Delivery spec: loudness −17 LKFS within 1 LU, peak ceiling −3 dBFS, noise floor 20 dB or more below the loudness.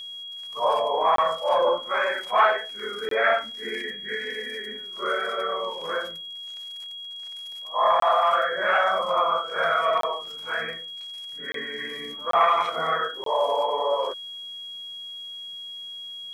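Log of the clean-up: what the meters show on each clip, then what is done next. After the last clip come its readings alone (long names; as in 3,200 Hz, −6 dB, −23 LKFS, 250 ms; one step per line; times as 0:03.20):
number of dropouts 7; longest dropout 23 ms; interfering tone 3,300 Hz; level of the tone −35 dBFS; integrated loudness −25.5 LKFS; sample peak −9.0 dBFS; target loudness −17.0 LKFS
→ repair the gap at 0:01.16/0:03.09/0:08.00/0:10.01/0:11.52/0:12.31/0:13.24, 23 ms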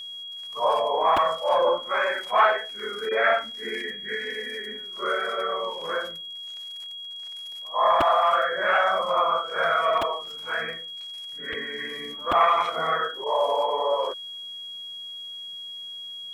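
number of dropouts 0; interfering tone 3,300 Hz; level of the tone −35 dBFS
→ notch filter 3,300 Hz, Q 30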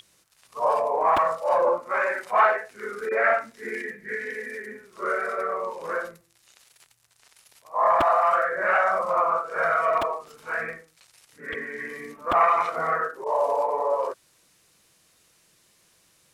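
interfering tone none found; integrated loudness −24.5 LKFS; sample peak −9.0 dBFS; target loudness −17.0 LKFS
→ level +7.5 dB
brickwall limiter −3 dBFS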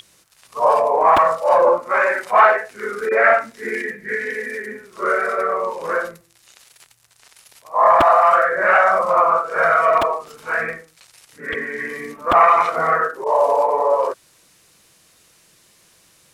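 integrated loudness −17.0 LKFS; sample peak −3.0 dBFS; background noise floor −55 dBFS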